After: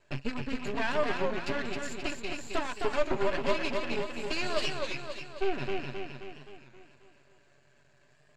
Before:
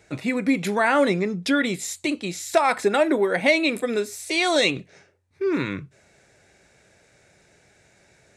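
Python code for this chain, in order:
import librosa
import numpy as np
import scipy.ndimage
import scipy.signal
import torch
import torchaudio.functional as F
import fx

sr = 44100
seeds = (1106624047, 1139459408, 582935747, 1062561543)

y = fx.rattle_buzz(x, sr, strikes_db=-39.0, level_db=-21.0)
y = fx.transient(y, sr, attack_db=5, sustain_db=-10)
y = 10.0 ** (-16.5 / 20.0) * np.tanh(y / 10.0 ** (-16.5 / 20.0))
y = fx.ripple_eq(y, sr, per_octave=1.4, db=15)
y = fx.echo_feedback(y, sr, ms=265, feedback_pct=53, wet_db=-4)
y = np.maximum(y, 0.0)
y = fx.air_absorb(y, sr, metres=93.0)
y = y + 0.44 * np.pad(y, (int(7.0 * sr / 1000.0), 0))[:len(y)]
y = fx.record_warp(y, sr, rpm=33.33, depth_cents=100.0)
y = y * 10.0 ** (-7.5 / 20.0)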